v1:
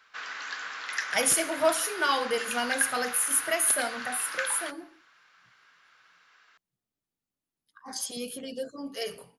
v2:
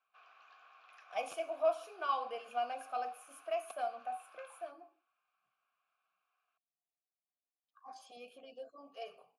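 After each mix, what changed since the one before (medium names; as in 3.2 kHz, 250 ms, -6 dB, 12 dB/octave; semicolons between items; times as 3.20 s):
background -10.0 dB; master: add vowel filter a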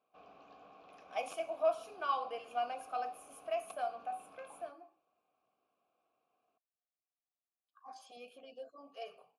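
background: remove resonant high-pass 1.5 kHz, resonance Q 2.6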